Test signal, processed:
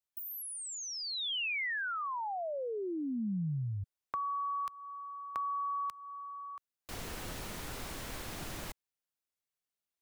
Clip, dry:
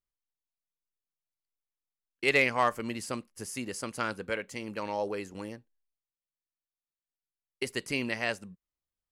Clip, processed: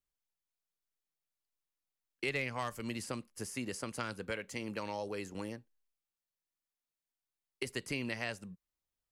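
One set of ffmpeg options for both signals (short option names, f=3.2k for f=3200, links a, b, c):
-filter_complex "[0:a]acrossover=split=160|2900[a][b][c];[a]acompressor=threshold=-40dB:ratio=4[d];[b]acompressor=threshold=-37dB:ratio=4[e];[c]acompressor=threshold=-44dB:ratio=4[f];[d][e][f]amix=inputs=3:normalize=0"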